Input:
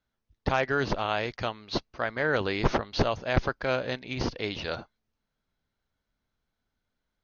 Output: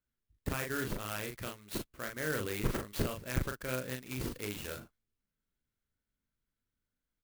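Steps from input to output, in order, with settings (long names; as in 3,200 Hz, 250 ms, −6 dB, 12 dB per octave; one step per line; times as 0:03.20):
parametric band 790 Hz −13.5 dB 0.88 octaves
double-tracking delay 39 ms −4.5 dB
converter with an unsteady clock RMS 0.052 ms
level −7 dB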